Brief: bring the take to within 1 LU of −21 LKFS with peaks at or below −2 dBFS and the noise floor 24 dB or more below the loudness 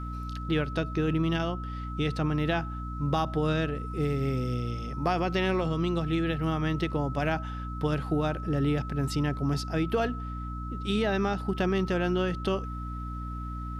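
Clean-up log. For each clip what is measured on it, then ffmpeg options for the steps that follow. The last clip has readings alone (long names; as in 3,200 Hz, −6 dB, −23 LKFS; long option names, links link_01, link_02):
mains hum 60 Hz; hum harmonics up to 300 Hz; level of the hum −33 dBFS; interfering tone 1,300 Hz; level of the tone −40 dBFS; integrated loudness −29.5 LKFS; sample peak −14.0 dBFS; target loudness −21.0 LKFS
→ -af "bandreject=frequency=60:width_type=h:width=6,bandreject=frequency=120:width_type=h:width=6,bandreject=frequency=180:width_type=h:width=6,bandreject=frequency=240:width_type=h:width=6,bandreject=frequency=300:width_type=h:width=6"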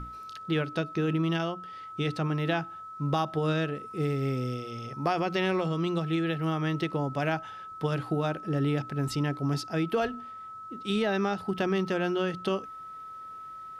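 mains hum none found; interfering tone 1,300 Hz; level of the tone −40 dBFS
→ -af "bandreject=frequency=1300:width=30"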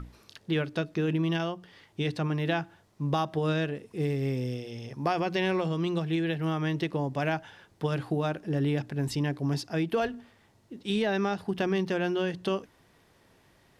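interfering tone none found; integrated loudness −30.0 LKFS; sample peak −15.5 dBFS; target loudness −21.0 LKFS
→ -af "volume=9dB"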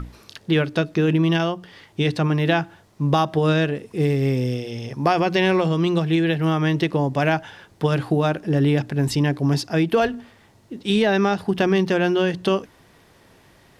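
integrated loudness −21.0 LKFS; sample peak −6.5 dBFS; background noise floor −54 dBFS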